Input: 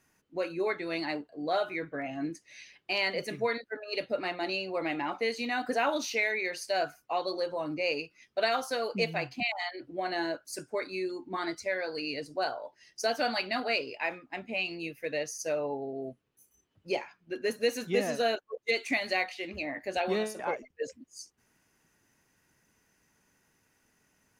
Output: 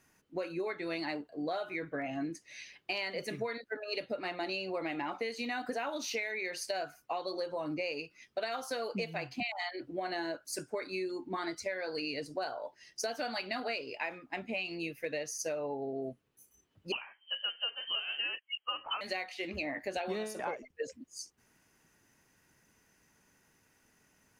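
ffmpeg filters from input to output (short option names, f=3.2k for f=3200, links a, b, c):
-filter_complex "[0:a]acompressor=threshold=-34dB:ratio=10,asettb=1/sr,asplit=3[a][b][c];[a]atrim=end=16.924[d];[b]atrim=start=16.92:end=19.01,asetpts=PTS-STARTPTS,afade=t=in:d=0.004:c=qsin,afade=t=out:st=2.086:d=0.004:c=qsin,lowpass=f=2.8k:t=q:w=0.5098,lowpass=f=2.8k:t=q:w=0.6013,lowpass=f=2.8k:t=q:w=0.9,lowpass=f=2.8k:t=q:w=2.563,afreqshift=-3300[e];[c]atrim=start=19.006[f];[d][e]acrossfade=d=0.004:c1=hsin:c2=qsin[g];[g][f]acrossfade=d=0.004:c1=qsin:c2=hsin,volume=1.5dB"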